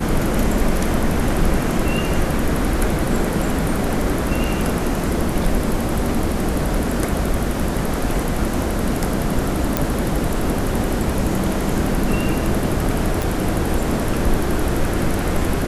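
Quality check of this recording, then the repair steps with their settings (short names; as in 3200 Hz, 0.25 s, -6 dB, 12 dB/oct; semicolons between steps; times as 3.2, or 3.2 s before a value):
9.77 pop
13.22 pop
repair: de-click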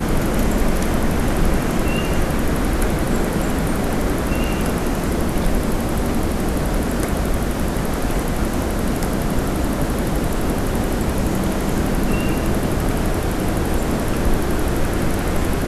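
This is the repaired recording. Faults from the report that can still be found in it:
none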